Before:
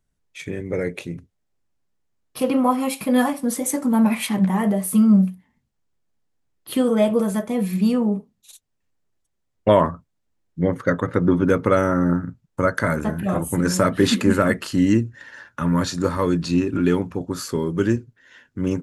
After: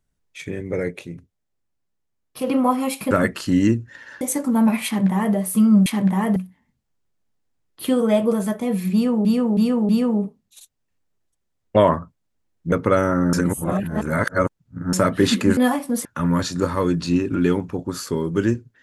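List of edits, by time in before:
0:00.91–0:02.47: clip gain −3.5 dB
0:03.11–0:03.59: swap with 0:14.37–0:15.47
0:04.23–0:04.73: duplicate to 0:05.24
0:07.81–0:08.13: repeat, 4 plays
0:10.64–0:11.52: remove
0:12.13–0:13.73: reverse

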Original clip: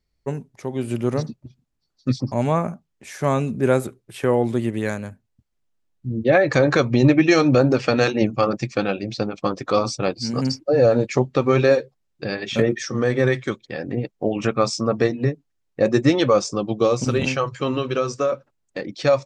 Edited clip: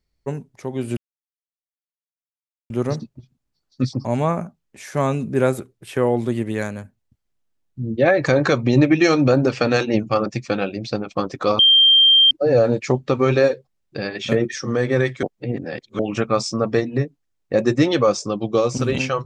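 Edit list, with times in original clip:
0:00.97: splice in silence 1.73 s
0:09.86–0:10.58: beep over 3,170 Hz −9 dBFS
0:13.50–0:14.26: reverse

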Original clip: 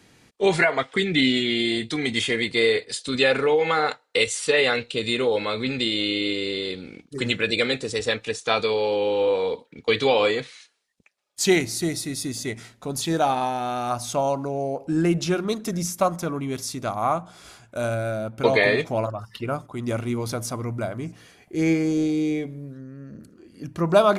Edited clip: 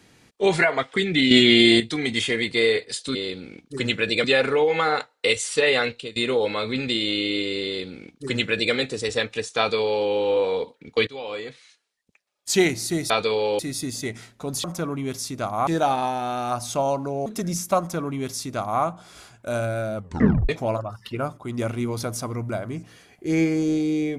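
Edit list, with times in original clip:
0:01.31–0:01.80: clip gain +8.5 dB
0:04.81–0:05.07: fade out, to −22.5 dB
0:06.56–0:07.65: duplicate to 0:03.15
0:08.49–0:08.98: duplicate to 0:12.01
0:09.98–0:11.42: fade in, from −20 dB
0:14.65–0:15.55: remove
0:16.08–0:17.11: duplicate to 0:13.06
0:18.25: tape stop 0.53 s

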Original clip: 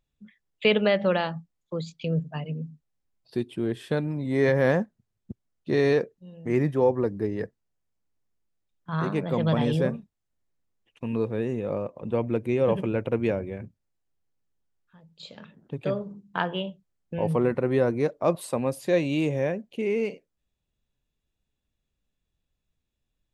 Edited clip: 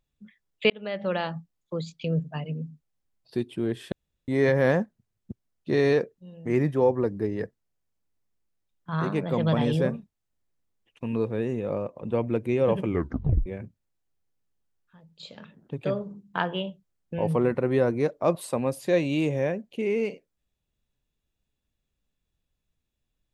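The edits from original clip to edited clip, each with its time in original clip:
0:00.70–0:01.37: fade in
0:03.92–0:04.28: fill with room tone
0:12.85: tape stop 0.61 s

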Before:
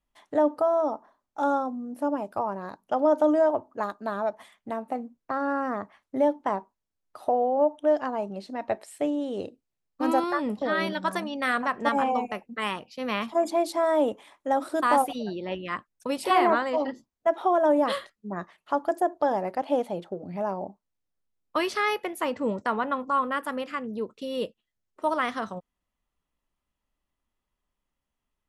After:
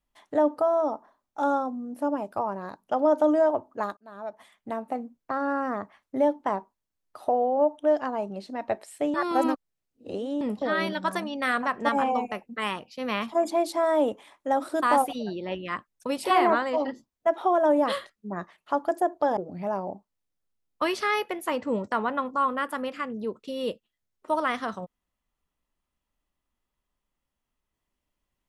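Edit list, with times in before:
0:03.97–0:04.71: fade in
0:09.14–0:10.41: reverse
0:19.37–0:20.11: remove

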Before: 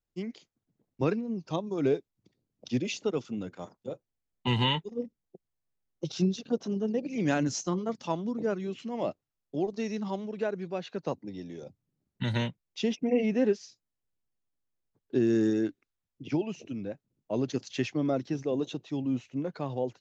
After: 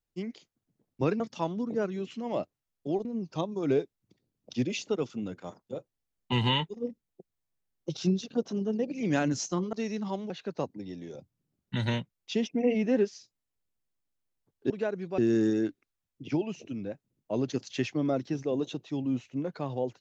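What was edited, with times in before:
0:07.88–0:09.73: move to 0:01.20
0:10.30–0:10.78: move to 0:15.18

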